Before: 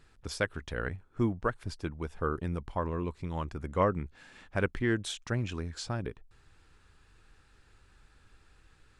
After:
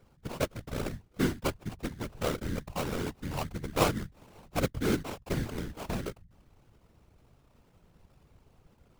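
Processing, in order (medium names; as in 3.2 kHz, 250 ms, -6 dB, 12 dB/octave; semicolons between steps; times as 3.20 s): sample-rate reducer 1.8 kHz, jitter 20%; whisper effect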